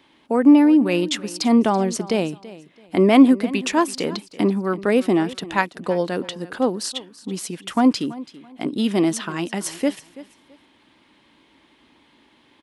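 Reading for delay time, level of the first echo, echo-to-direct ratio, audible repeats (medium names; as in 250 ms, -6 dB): 332 ms, -18.0 dB, -17.5 dB, 2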